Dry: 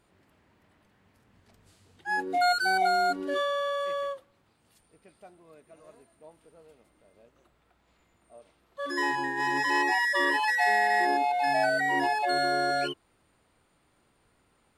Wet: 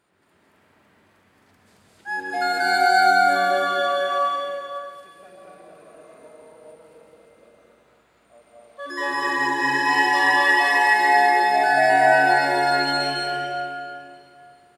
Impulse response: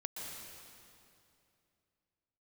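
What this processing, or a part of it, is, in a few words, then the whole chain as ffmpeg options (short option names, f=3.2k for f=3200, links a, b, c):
stadium PA: -filter_complex "[0:a]highpass=f=190:p=1,equalizer=f=1.5k:t=o:w=0.75:g=3.5,aecho=1:1:221.6|265.3:1|0.794[a];[1:a]atrim=start_sample=2205[b];[a][b]afir=irnorm=-1:irlink=0,volume=3dB"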